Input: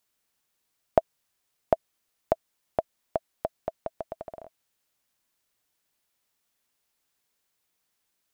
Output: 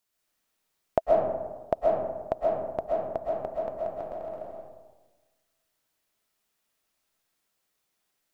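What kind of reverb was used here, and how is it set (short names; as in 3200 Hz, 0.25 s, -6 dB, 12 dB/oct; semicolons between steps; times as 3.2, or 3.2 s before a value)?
digital reverb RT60 1.3 s, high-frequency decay 0.4×, pre-delay 90 ms, DRR -4 dB; gain -4 dB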